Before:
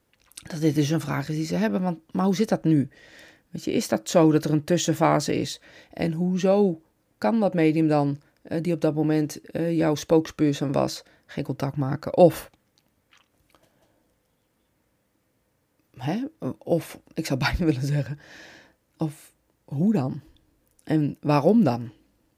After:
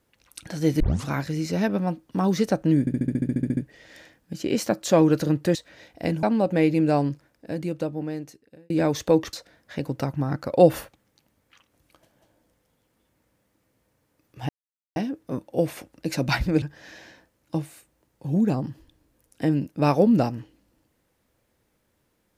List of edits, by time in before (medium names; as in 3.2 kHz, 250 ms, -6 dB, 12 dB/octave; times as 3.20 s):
0.80 s: tape start 0.26 s
2.80 s: stutter 0.07 s, 12 plays
4.78–5.51 s: delete
6.19–7.25 s: delete
8.09–9.72 s: fade out
10.35–10.93 s: delete
16.09 s: insert silence 0.47 s
17.75–18.09 s: delete